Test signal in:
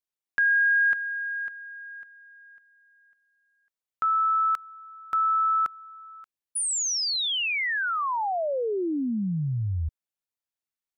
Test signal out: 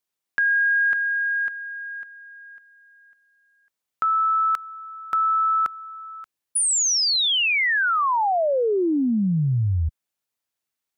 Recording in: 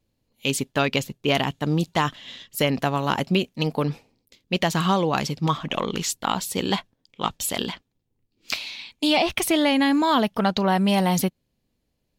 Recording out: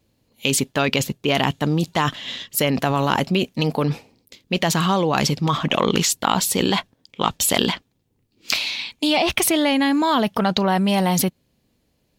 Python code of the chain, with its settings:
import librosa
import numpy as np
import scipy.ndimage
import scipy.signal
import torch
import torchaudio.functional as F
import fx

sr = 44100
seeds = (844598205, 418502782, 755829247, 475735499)

p1 = fx.highpass(x, sr, hz=61.0, slope=6)
p2 = fx.over_compress(p1, sr, threshold_db=-28.0, ratio=-1.0)
p3 = p1 + (p2 * 10.0 ** (2.0 / 20.0))
y = p3 * 10.0 ** (-1.0 / 20.0)